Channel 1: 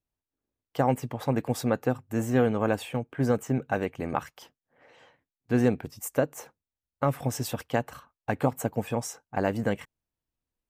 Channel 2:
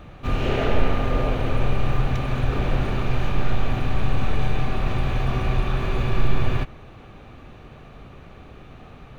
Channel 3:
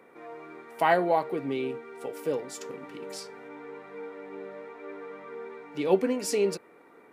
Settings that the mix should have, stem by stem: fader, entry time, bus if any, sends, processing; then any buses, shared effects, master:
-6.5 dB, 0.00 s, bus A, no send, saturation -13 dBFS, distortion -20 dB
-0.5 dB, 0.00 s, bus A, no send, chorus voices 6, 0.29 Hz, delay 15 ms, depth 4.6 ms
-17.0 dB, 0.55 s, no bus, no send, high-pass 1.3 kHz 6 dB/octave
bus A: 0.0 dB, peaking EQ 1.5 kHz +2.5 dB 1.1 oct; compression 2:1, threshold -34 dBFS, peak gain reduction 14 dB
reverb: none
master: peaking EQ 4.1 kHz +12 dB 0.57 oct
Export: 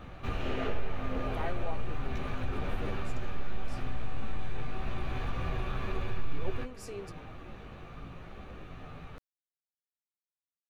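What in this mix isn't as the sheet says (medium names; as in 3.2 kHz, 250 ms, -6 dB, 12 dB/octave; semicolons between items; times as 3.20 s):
stem 1: muted; stem 3: missing high-pass 1.3 kHz 6 dB/octave; master: missing peaking EQ 4.1 kHz +12 dB 0.57 oct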